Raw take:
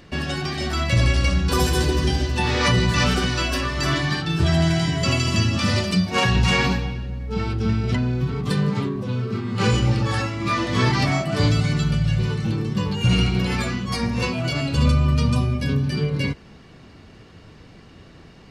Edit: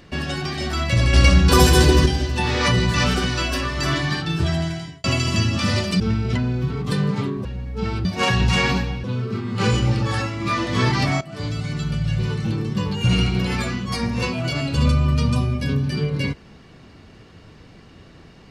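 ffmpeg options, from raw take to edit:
ffmpeg -i in.wav -filter_complex "[0:a]asplit=9[link_01][link_02][link_03][link_04][link_05][link_06][link_07][link_08][link_09];[link_01]atrim=end=1.132[link_10];[link_02]atrim=start=1.128:end=2.062,asetpts=PTS-STARTPTS,volume=6.5dB[link_11];[link_03]atrim=start=2.058:end=5.04,asetpts=PTS-STARTPTS,afade=type=out:start_time=2.242:duration=0.74[link_12];[link_04]atrim=start=5.04:end=6.002,asetpts=PTS-STARTPTS,afade=type=in:duration=0.004:curve=hsin[link_13];[link_05]atrim=start=7.588:end=9.042[link_14];[link_06]atrim=start=6.988:end=7.592[link_15];[link_07]atrim=start=5.998:end=6.992[link_16];[link_08]atrim=start=9.038:end=11.21,asetpts=PTS-STARTPTS,afade=type=out:start_time=2.168:duration=0.004:curve=hsin:silence=0.188365[link_17];[link_09]atrim=start=11.21,asetpts=PTS-STARTPTS,afade=type=in:duration=1.13:silence=0.188365[link_18];[link_10][link_11]acrossfade=duration=0.004:curve1=hsin:curve2=hsin[link_19];[link_12][link_13]concat=n=2:v=0:a=1[link_20];[link_19][link_20]acrossfade=duration=0.004:curve1=hsin:curve2=hsin[link_21];[link_21][link_14]acrossfade=duration=0.004:curve1=hsin:curve2=hsin[link_22];[link_22][link_15]acrossfade=duration=0.004:curve1=hsin:curve2=hsin[link_23];[link_23][link_16]acrossfade=duration=0.004:curve1=hsin:curve2=hsin[link_24];[link_17][link_18]concat=n=2:v=0:a=1[link_25];[link_24][link_25]acrossfade=duration=0.004:curve1=hsin:curve2=hsin" out.wav

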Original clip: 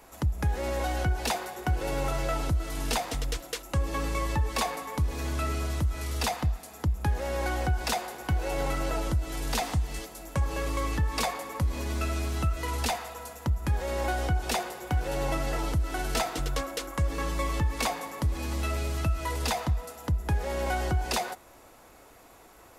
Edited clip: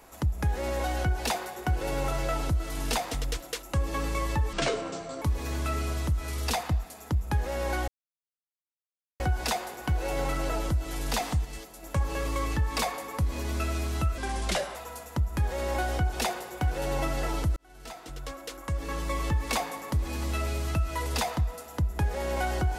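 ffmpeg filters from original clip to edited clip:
ffmpeg -i in.wav -filter_complex "[0:a]asplit=9[link_01][link_02][link_03][link_04][link_05][link_06][link_07][link_08][link_09];[link_01]atrim=end=4.534[link_10];[link_02]atrim=start=4.53:end=4.95,asetpts=PTS-STARTPTS,asetrate=26901,aresample=44100[link_11];[link_03]atrim=start=4.946:end=7.61,asetpts=PTS-STARTPTS,afade=type=out:start_time=2.66:duration=0.004:curve=hsin,apad=pad_dur=1.32[link_12];[link_04]atrim=start=7.61:end=9.862,asetpts=PTS-STARTPTS,afade=type=in:duration=0.004:curve=hsin[link_13];[link_05]atrim=start=9.858:end=10.242,asetpts=PTS-STARTPTS,volume=-4dB[link_14];[link_06]atrim=start=10.238:end=12.594[link_15];[link_07]atrim=start=12.59:end=13.05,asetpts=PTS-STARTPTS,asetrate=35280,aresample=44100[link_16];[link_08]atrim=start=13.046:end=15.86,asetpts=PTS-STARTPTS,afade=type=out:start_time=2.81:duration=0.004:curve=hsin[link_17];[link_09]atrim=start=15.86,asetpts=PTS-STARTPTS,afade=type=in:duration=1.77[link_18];[link_10][link_11]acrossfade=duration=0.004:curve1=hsin:curve2=hsin[link_19];[link_12][link_13]concat=n=2:v=0:a=1[link_20];[link_19][link_20]acrossfade=duration=0.004:curve1=hsin:curve2=hsin[link_21];[link_21][link_14]acrossfade=duration=0.004:curve1=hsin:curve2=hsin[link_22];[link_22][link_15]acrossfade=duration=0.004:curve1=hsin:curve2=hsin[link_23];[link_23][link_16]acrossfade=duration=0.004:curve1=hsin:curve2=hsin[link_24];[link_17][link_18]concat=n=2:v=0:a=1[link_25];[link_24][link_25]acrossfade=duration=0.004:curve1=hsin:curve2=hsin" out.wav

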